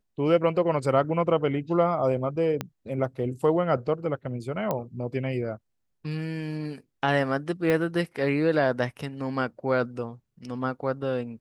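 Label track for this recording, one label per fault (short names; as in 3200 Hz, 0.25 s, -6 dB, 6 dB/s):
2.610000	2.610000	pop -14 dBFS
4.710000	4.710000	pop -14 dBFS
7.700000	7.700000	pop -13 dBFS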